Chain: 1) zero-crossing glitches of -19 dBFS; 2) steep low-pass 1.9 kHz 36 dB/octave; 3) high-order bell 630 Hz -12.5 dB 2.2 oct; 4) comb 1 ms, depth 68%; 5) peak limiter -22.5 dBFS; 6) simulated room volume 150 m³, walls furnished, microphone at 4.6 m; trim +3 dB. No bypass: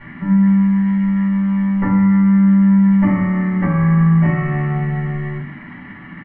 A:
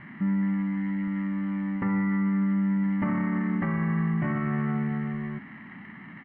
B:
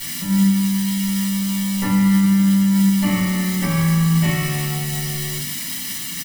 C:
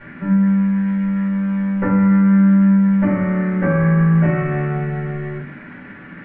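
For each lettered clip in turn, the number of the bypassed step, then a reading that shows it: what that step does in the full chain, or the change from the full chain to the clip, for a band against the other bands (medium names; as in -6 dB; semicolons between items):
6, echo-to-direct 6.0 dB to none; 2, 2 kHz band +4.0 dB; 4, 500 Hz band +7.5 dB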